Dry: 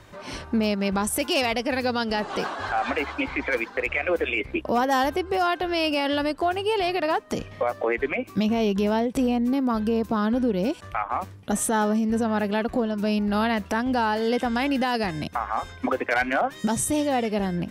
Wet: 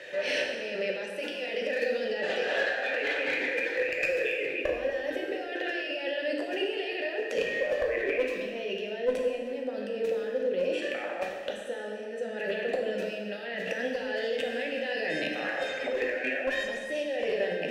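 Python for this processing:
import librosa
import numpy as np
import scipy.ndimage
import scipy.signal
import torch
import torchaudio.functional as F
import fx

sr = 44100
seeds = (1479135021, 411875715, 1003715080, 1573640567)

y = scipy.signal.sosfilt(scipy.signal.butter(4, 140.0, 'highpass', fs=sr, output='sos'), x)
y = fx.high_shelf(y, sr, hz=2200.0, db=11.0)
y = fx.hum_notches(y, sr, base_hz=50, count=9)
y = fx.over_compress(y, sr, threshold_db=-31.0, ratio=-1.0)
y = fx.vowel_filter(y, sr, vowel='e')
y = fx.clip_asym(y, sr, top_db=-32.5, bottom_db=-27.5)
y = fx.rev_plate(y, sr, seeds[0], rt60_s=1.7, hf_ratio=0.8, predelay_ms=0, drr_db=-0.5)
y = fx.band_squash(y, sr, depth_pct=70, at=(13.67, 15.93))
y = F.gain(torch.from_numpy(y), 8.5).numpy()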